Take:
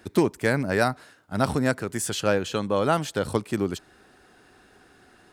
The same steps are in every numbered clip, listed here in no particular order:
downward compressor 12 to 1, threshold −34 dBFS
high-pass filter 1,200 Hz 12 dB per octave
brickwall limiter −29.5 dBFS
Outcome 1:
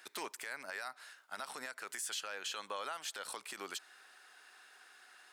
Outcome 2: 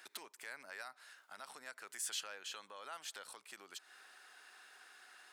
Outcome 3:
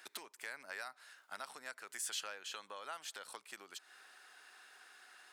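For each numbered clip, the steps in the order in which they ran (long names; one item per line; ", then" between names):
high-pass filter, then downward compressor, then brickwall limiter
downward compressor, then brickwall limiter, then high-pass filter
downward compressor, then high-pass filter, then brickwall limiter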